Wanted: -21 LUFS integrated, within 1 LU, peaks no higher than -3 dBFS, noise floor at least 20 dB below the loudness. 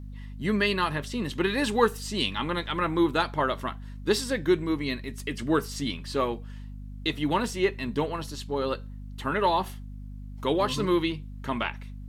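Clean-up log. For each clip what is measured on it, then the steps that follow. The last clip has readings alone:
hum 50 Hz; highest harmonic 250 Hz; hum level -37 dBFS; loudness -28.0 LUFS; peak level -7.0 dBFS; loudness target -21.0 LUFS
-> de-hum 50 Hz, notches 5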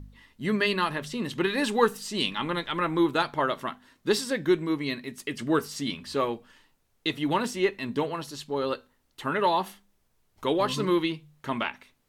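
hum not found; loudness -28.0 LUFS; peak level -6.5 dBFS; loudness target -21.0 LUFS
-> trim +7 dB; peak limiter -3 dBFS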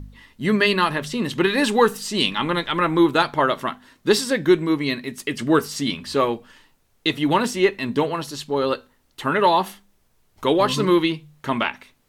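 loudness -21.0 LUFS; peak level -3.0 dBFS; noise floor -63 dBFS

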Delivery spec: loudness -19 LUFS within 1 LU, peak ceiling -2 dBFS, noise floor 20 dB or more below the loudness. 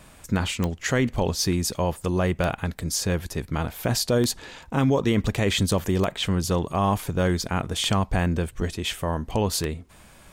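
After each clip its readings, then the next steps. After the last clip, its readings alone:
clicks found 6; loudness -25.0 LUFS; peak level -8.0 dBFS; loudness target -19.0 LUFS
-> de-click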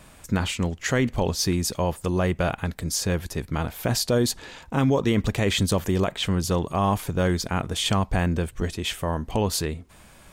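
clicks found 0; loudness -25.0 LUFS; peak level -12.5 dBFS; loudness target -19.0 LUFS
-> trim +6 dB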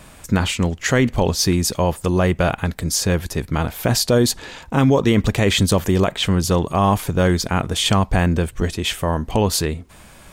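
loudness -19.0 LUFS; peak level -6.5 dBFS; noise floor -44 dBFS

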